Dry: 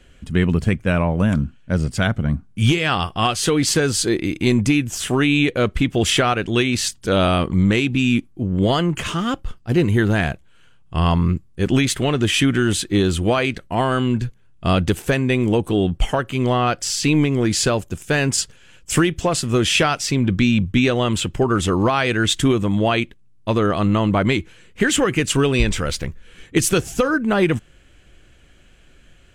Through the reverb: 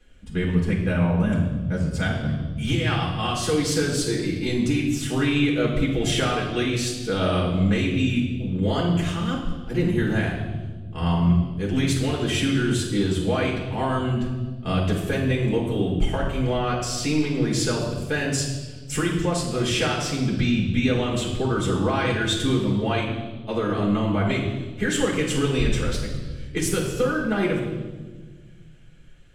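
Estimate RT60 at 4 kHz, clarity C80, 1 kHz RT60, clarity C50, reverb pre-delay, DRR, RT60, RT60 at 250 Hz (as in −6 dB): 1.3 s, 6.0 dB, 1.2 s, 3.5 dB, 5 ms, −4.5 dB, 1.4 s, 2.3 s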